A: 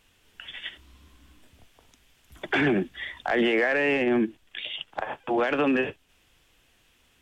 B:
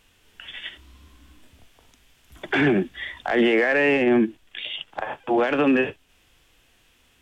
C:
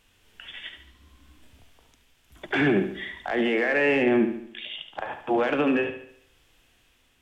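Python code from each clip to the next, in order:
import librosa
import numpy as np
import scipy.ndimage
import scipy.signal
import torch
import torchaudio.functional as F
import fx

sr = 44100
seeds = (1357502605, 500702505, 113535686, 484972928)

y1 = fx.hpss(x, sr, part='harmonic', gain_db=5)
y2 = fx.tremolo_shape(y1, sr, shape='triangle', hz=0.8, depth_pct=35)
y2 = fx.echo_bbd(y2, sr, ms=72, stages=2048, feedback_pct=47, wet_db=-9.5)
y2 = F.gain(torch.from_numpy(y2), -2.0).numpy()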